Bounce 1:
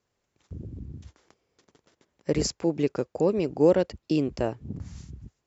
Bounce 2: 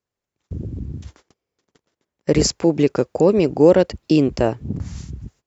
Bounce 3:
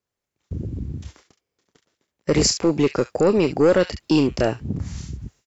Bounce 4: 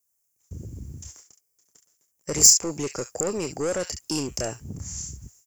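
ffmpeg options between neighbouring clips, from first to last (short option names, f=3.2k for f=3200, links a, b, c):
-filter_complex "[0:a]agate=range=-18dB:threshold=-57dB:ratio=16:detection=peak,asplit=2[a][b];[b]alimiter=limit=-16.5dB:level=0:latency=1,volume=-1dB[c];[a][c]amix=inputs=2:normalize=0,volume=4.5dB"
-filter_complex "[0:a]acrossover=split=1300[a][b];[a]asoftclip=type=tanh:threshold=-10dB[c];[b]aecho=1:1:28|69:0.668|0.422[d];[c][d]amix=inputs=2:normalize=0"
-af "equalizer=f=260:w=0.97:g=-4,asoftclip=type=tanh:threshold=-12.5dB,aexciter=amount=9.5:drive=8.3:freq=5.8k,volume=-7.5dB"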